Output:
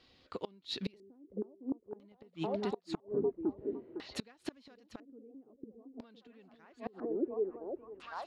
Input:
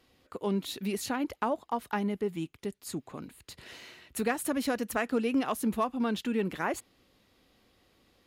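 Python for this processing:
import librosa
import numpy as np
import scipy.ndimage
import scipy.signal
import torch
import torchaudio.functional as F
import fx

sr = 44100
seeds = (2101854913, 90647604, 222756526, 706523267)

y = fx.echo_stepped(x, sr, ms=507, hz=340.0, octaves=0.7, feedback_pct=70, wet_db=-1)
y = fx.gate_flip(y, sr, shuts_db=-23.0, range_db=-29)
y = fx.filter_lfo_lowpass(y, sr, shape='square', hz=0.5, low_hz=390.0, high_hz=4400.0, q=2.4)
y = y * 10.0 ** (-1.5 / 20.0)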